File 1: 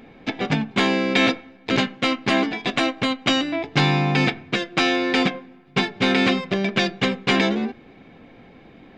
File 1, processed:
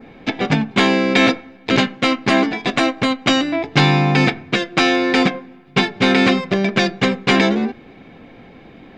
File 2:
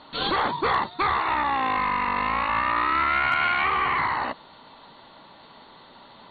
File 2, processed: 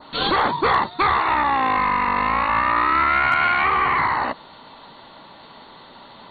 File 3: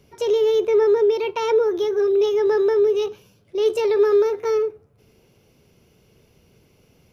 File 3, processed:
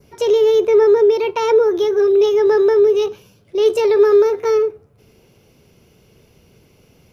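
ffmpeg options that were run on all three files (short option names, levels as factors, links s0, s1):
-af "adynamicequalizer=threshold=0.01:dfrequency=3100:dqfactor=2:tfrequency=3100:tqfactor=2:attack=5:release=100:ratio=0.375:range=2.5:mode=cutabove:tftype=bell,volume=1.78"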